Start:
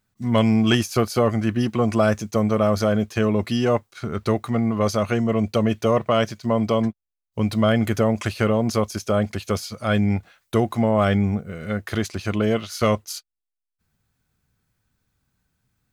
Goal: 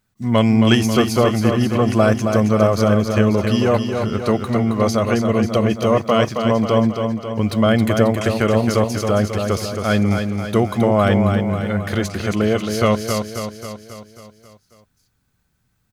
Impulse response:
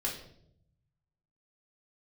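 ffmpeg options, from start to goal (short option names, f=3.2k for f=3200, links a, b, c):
-af "aecho=1:1:270|540|810|1080|1350|1620|1890:0.501|0.281|0.157|0.088|0.0493|0.0276|0.0155,volume=3dB"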